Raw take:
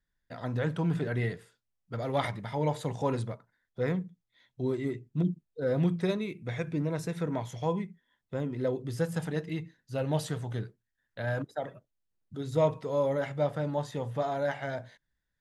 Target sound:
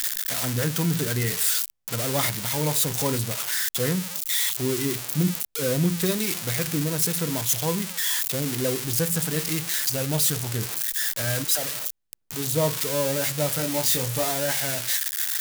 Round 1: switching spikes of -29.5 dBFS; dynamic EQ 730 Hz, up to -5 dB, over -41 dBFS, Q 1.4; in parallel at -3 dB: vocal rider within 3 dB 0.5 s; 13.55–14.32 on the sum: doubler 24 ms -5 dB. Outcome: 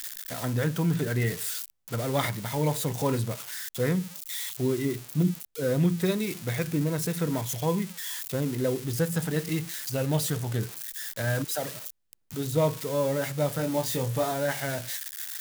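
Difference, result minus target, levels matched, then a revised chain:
switching spikes: distortion -11 dB
switching spikes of -18 dBFS; dynamic EQ 730 Hz, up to -5 dB, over -41 dBFS, Q 1.4; in parallel at -3 dB: vocal rider within 3 dB 0.5 s; 13.55–14.32 on the sum: doubler 24 ms -5 dB

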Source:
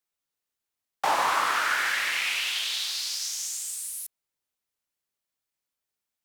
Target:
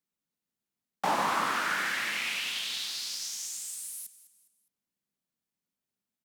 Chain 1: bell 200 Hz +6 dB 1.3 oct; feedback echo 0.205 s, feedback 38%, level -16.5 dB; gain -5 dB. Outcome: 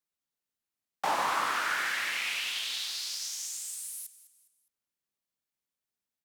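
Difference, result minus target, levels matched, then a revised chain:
250 Hz band -7.0 dB
bell 200 Hz +17.5 dB 1.3 oct; feedback echo 0.205 s, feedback 38%, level -16.5 dB; gain -5 dB

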